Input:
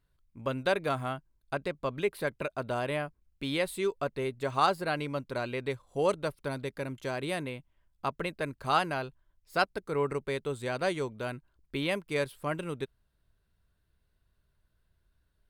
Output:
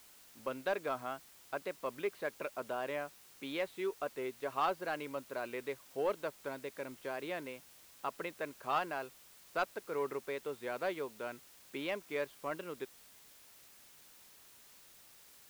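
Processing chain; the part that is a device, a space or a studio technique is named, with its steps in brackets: tape answering machine (BPF 300–3000 Hz; soft clip -18 dBFS, distortion -19 dB; wow and flutter; white noise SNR 19 dB); gain -5 dB

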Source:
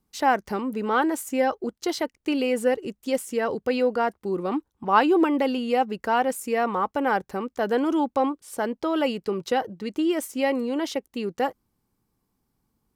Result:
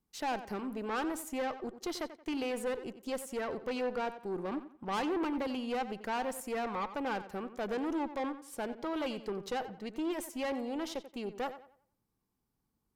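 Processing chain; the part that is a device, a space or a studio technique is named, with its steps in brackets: rockabilly slapback (tube stage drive 23 dB, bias 0.45; tape echo 90 ms, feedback 34%, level -11 dB, low-pass 3500 Hz); gain -7 dB

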